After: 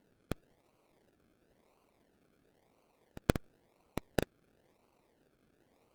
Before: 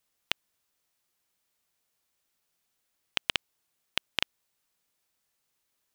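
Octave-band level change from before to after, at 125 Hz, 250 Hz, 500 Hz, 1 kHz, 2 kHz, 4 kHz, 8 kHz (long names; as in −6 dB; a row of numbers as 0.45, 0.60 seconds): +14.0, +12.5, +9.5, −2.0, −10.5, −18.5, −5.0 decibels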